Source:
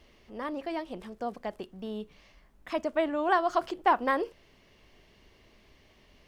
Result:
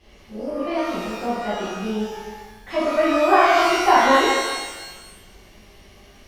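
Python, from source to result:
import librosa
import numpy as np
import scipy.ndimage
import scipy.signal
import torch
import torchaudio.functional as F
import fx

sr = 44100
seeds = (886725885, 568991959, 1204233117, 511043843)

y = fx.spec_repair(x, sr, seeds[0], start_s=0.35, length_s=0.22, low_hz=720.0, high_hz=4600.0, source='before')
y = fx.env_lowpass_down(y, sr, base_hz=2500.0, full_db=-25.0)
y = fx.rev_shimmer(y, sr, seeds[1], rt60_s=1.2, semitones=12, shimmer_db=-8, drr_db=-11.0)
y = y * librosa.db_to_amplitude(-1.0)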